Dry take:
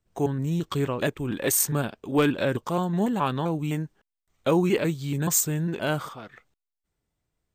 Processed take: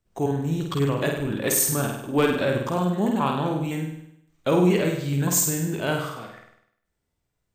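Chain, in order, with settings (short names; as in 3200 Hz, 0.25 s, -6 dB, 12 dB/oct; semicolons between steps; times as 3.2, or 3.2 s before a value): flutter echo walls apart 8.6 m, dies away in 0.75 s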